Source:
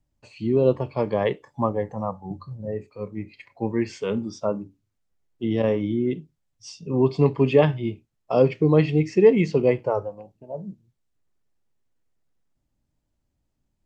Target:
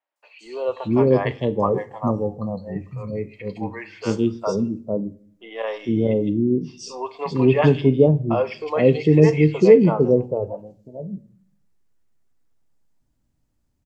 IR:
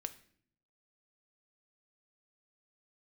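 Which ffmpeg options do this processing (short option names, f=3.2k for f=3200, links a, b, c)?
-filter_complex "[0:a]acrossover=split=590|3100[a][b][c];[c]adelay=160[d];[a]adelay=450[e];[e][b][d]amix=inputs=3:normalize=0,asplit=2[f][g];[1:a]atrim=start_sample=2205[h];[g][h]afir=irnorm=-1:irlink=0,volume=2.5dB[i];[f][i]amix=inputs=2:normalize=0,volume=-1.5dB"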